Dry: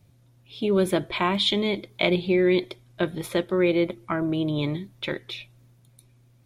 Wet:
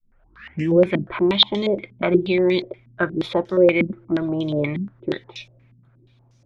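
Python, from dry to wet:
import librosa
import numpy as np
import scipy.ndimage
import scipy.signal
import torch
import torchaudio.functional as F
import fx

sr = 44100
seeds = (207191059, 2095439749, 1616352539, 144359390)

y = fx.tape_start_head(x, sr, length_s=0.85)
y = fx.filter_held_lowpass(y, sr, hz=8.4, low_hz=220.0, high_hz=5900.0)
y = F.gain(torch.from_numpy(y), 1.0).numpy()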